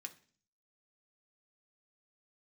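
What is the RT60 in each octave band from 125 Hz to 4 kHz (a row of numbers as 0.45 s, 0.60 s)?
0.70 s, 0.65 s, 0.50 s, 0.40 s, 0.45 s, 0.50 s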